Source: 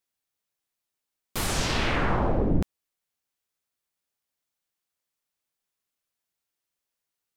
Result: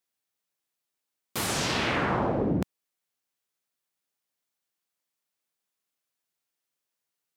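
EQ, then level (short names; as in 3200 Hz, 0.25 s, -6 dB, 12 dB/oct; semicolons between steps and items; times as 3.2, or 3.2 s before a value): HPF 120 Hz 12 dB/oct; 0.0 dB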